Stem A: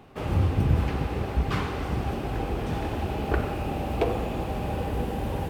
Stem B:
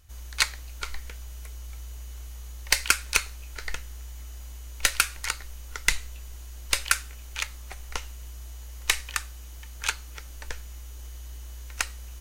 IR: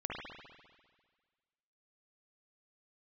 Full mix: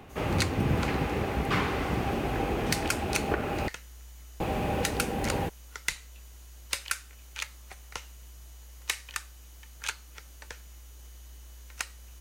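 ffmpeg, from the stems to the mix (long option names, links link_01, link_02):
-filter_complex "[0:a]equalizer=frequency=2100:width_type=o:width=0.77:gain=4,volume=1.5dB,asplit=3[link_01][link_02][link_03];[link_01]atrim=end=3.68,asetpts=PTS-STARTPTS,afade=type=out:start_time=3.676:duration=0.004:curve=hsin[link_04];[link_02]atrim=start=3.68:end=4.4,asetpts=PTS-STARTPTS,volume=0[link_05];[link_03]atrim=start=4.4,asetpts=PTS-STARTPTS,afade=type=in:duration=0.004:curve=hsin[link_06];[link_04][link_05][link_06]concat=n=3:v=0:a=1[link_07];[1:a]highpass=59,volume=-5dB[link_08];[link_07][link_08]amix=inputs=2:normalize=0,acrossover=split=150[link_09][link_10];[link_09]acompressor=threshold=-36dB:ratio=2.5[link_11];[link_11][link_10]amix=inputs=2:normalize=0,alimiter=limit=-13.5dB:level=0:latency=1:release=300"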